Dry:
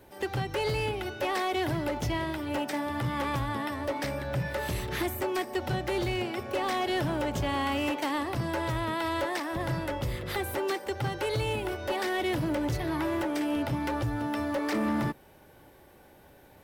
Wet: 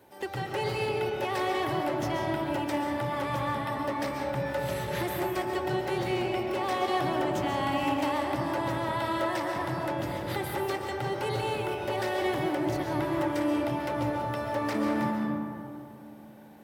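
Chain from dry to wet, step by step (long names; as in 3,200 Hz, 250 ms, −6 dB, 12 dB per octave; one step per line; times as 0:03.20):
high-pass filter 110 Hz 12 dB per octave
parametric band 880 Hz +3.5 dB 0.5 octaves
comb and all-pass reverb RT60 2.7 s, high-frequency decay 0.3×, pre-delay 95 ms, DRR 0.5 dB
level −3 dB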